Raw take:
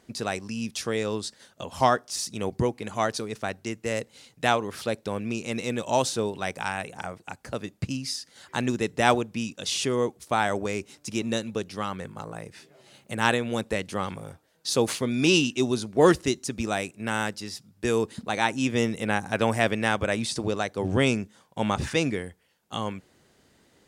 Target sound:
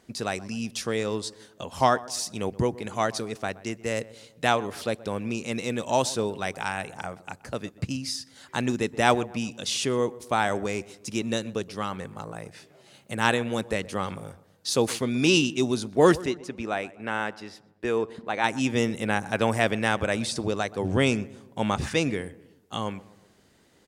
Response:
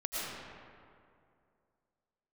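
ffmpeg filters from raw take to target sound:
-filter_complex "[0:a]asettb=1/sr,asplit=3[link_01][link_02][link_03];[link_01]atrim=end=16.264[link_04];[link_02]atrim=start=16.26:end=18.44,asetpts=PTS-STARTPTS,afade=type=in:duration=0.004:curve=qsin,afade=type=out:start_time=2.176:duration=0.004:curve=qsin,bass=frequency=250:gain=-8,treble=frequency=4000:gain=-15[link_05];[link_03]atrim=start=18.436[link_06];[link_04][link_05]acrossfade=duration=0.004:curve1=hsin:curve2=qsin[link_07];[link_07][link_06]acrossfade=duration=0.004:curve1=qsin:curve2=hsin,asplit=2[link_08][link_09];[link_09]adelay=125,lowpass=frequency=1500:poles=1,volume=-18.5dB,asplit=2[link_10][link_11];[link_11]adelay=125,lowpass=frequency=1500:poles=1,volume=0.51,asplit=2[link_12][link_13];[link_13]adelay=125,lowpass=frequency=1500:poles=1,volume=0.51,asplit=2[link_14][link_15];[link_15]adelay=125,lowpass=frequency=1500:poles=1,volume=0.51[link_16];[link_08][link_10][link_12][link_14][link_16]amix=inputs=5:normalize=0"

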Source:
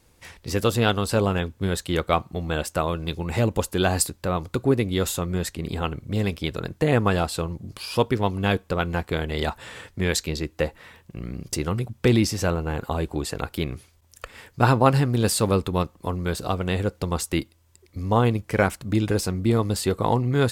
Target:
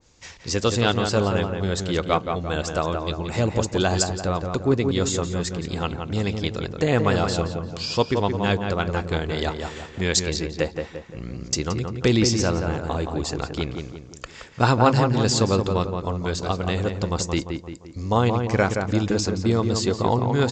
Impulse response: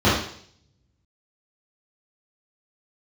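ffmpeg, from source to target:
-filter_complex "[0:a]bass=frequency=250:gain=-1,treble=frequency=4000:gain=10,asplit=2[link_01][link_02];[link_02]adelay=173,lowpass=frequency=2100:poles=1,volume=-5dB,asplit=2[link_03][link_04];[link_04]adelay=173,lowpass=frequency=2100:poles=1,volume=0.48,asplit=2[link_05][link_06];[link_06]adelay=173,lowpass=frequency=2100:poles=1,volume=0.48,asplit=2[link_07][link_08];[link_08]adelay=173,lowpass=frequency=2100:poles=1,volume=0.48,asplit=2[link_09][link_10];[link_10]adelay=173,lowpass=frequency=2100:poles=1,volume=0.48,asplit=2[link_11][link_12];[link_12]adelay=173,lowpass=frequency=2100:poles=1,volume=0.48[link_13];[link_03][link_05][link_07][link_09][link_11][link_13]amix=inputs=6:normalize=0[link_14];[link_01][link_14]amix=inputs=2:normalize=0,aresample=16000,aresample=44100,adynamicequalizer=threshold=0.0141:dfrequency=1900:dqfactor=0.7:tfrequency=1900:tqfactor=0.7:attack=5:release=100:ratio=0.375:range=1.5:mode=cutabove:tftype=highshelf"

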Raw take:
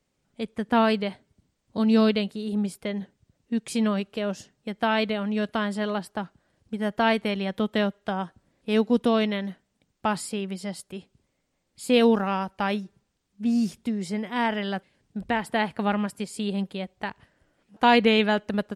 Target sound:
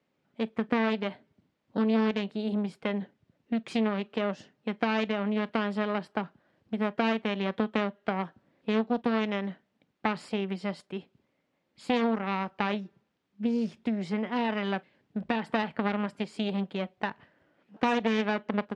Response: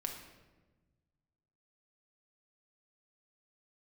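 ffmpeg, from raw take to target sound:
-filter_complex "[0:a]aeval=exprs='0.447*(cos(1*acos(clip(val(0)/0.447,-1,1)))-cos(1*PI/2))+0.178*(cos(4*acos(clip(val(0)/0.447,-1,1)))-cos(4*PI/2))':channel_layout=same,acompressor=threshold=-25dB:ratio=3,highpass=150,lowpass=3100,asplit=2[link_01][link_02];[1:a]atrim=start_sample=2205,atrim=end_sample=3528,asetrate=66150,aresample=44100[link_03];[link_02][link_03]afir=irnorm=-1:irlink=0,volume=-8.5dB[link_04];[link_01][link_04]amix=inputs=2:normalize=0"

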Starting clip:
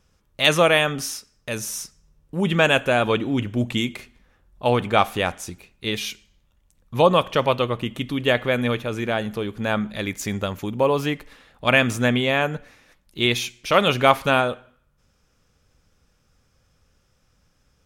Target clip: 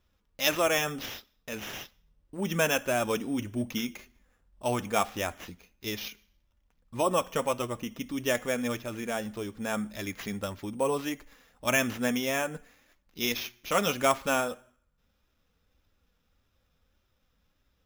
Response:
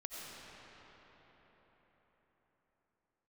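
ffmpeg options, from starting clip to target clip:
-filter_complex "[0:a]asettb=1/sr,asplit=3[link_01][link_02][link_03];[link_01]atrim=end=6.084[link_04];[link_02]atrim=start=6.08:end=8.17,asetpts=PTS-STARTPTS,afade=type=in:duration=0.004:curve=qsin,afade=type=out:start_time=2.086:duration=0.004:curve=qsin,acrossover=split=3900[link_05][link_06];[link_06]acompressor=threshold=-51dB:ratio=4:attack=1:release=60[link_07];[link_05][link_07]amix=inputs=2:normalize=0[link_08];[link_03]atrim=start=8.166[link_09];[link_04][link_08]acrossfade=duration=0.004:curve1=hsin:curve2=qsin[link_10];[link_10][link_09]acrossfade=duration=0.004:curve1=qsin:curve2=hsin,flanger=delay=2.9:depth=1.6:regen=-33:speed=1.7:shape=triangular,acrusher=samples=5:mix=1:aa=0.000001,volume=-5dB"

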